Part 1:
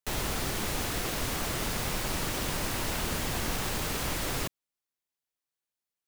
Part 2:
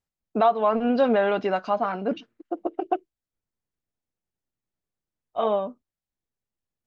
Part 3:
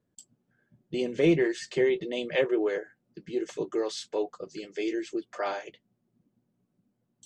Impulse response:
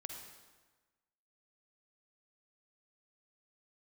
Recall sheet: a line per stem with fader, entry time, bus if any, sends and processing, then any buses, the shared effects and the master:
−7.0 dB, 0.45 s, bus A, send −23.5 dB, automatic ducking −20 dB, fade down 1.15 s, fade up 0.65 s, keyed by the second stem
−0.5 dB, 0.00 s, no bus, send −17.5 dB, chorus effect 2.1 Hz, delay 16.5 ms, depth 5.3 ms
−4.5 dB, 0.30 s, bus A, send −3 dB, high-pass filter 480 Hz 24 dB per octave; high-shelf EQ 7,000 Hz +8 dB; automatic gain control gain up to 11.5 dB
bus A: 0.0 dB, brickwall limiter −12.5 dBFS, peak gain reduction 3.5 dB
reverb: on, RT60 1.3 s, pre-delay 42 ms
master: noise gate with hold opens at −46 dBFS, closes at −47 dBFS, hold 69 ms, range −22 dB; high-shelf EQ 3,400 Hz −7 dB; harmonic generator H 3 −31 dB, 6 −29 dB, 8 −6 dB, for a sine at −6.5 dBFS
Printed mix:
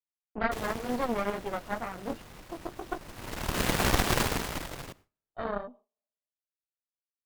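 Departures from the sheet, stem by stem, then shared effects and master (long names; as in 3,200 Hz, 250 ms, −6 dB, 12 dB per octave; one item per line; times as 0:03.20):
stem 1 −7.0 dB → +2.0 dB
stem 2 −0.5 dB → −10.0 dB
stem 3: muted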